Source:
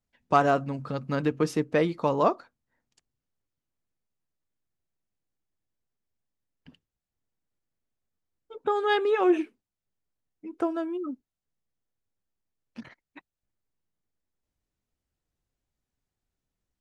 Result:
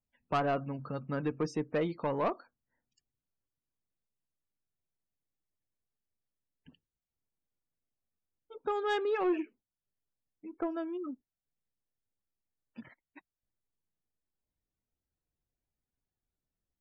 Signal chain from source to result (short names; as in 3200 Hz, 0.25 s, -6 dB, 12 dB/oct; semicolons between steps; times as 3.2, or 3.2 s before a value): loudest bins only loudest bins 64; soft clip -17.5 dBFS, distortion -14 dB; gain -5.5 dB